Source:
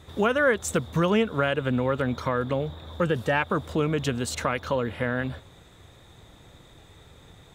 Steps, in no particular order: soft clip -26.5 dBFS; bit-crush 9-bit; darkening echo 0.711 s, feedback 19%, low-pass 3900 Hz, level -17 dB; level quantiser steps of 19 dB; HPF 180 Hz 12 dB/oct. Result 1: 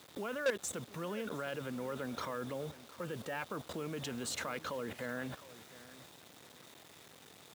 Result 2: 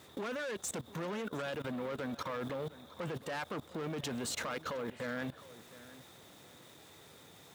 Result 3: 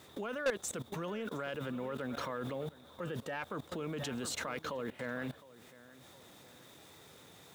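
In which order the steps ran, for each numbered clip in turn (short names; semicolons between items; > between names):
level quantiser > soft clip > darkening echo > bit-crush > HPF; bit-crush > soft clip > HPF > level quantiser > darkening echo; darkening echo > bit-crush > HPF > level quantiser > soft clip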